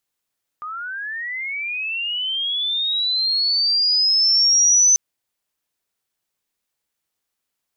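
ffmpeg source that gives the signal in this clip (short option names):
-f lavfi -i "aevalsrc='pow(10,(-27.5+17*t/4.34)/20)*sin(2*PI*(1200*t+4900*t*t/(2*4.34)))':d=4.34:s=44100"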